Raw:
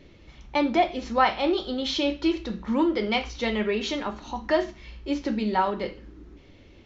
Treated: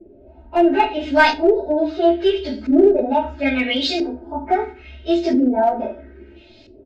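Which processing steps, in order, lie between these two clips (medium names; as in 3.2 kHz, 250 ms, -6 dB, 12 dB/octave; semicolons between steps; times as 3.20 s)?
frequency-domain pitch shifter +3 st; bass shelf 61 Hz -11 dB; hum notches 60/120/180/240/300 Hz; comb 3.2 ms, depth 86%; LFO low-pass saw up 0.75 Hz 360–5400 Hz; in parallel at -5.5 dB: one-sided clip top -18 dBFS; on the sum: Butterworth band-stop 1.1 kHz, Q 3; on a send at -10.5 dB: reverberation RT60 0.40 s, pre-delay 5 ms; on the sum: trim +2 dB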